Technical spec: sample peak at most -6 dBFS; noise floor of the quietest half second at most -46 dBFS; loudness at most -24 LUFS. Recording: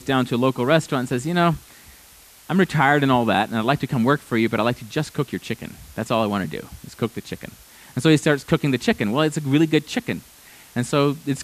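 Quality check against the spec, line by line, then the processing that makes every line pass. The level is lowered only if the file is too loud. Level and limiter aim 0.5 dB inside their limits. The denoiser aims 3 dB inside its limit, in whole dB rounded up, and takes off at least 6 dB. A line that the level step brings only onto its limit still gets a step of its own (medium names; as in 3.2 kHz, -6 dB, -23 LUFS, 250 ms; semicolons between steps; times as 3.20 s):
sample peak -3.5 dBFS: fail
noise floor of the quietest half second -48 dBFS: pass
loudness -21.0 LUFS: fail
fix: trim -3.5 dB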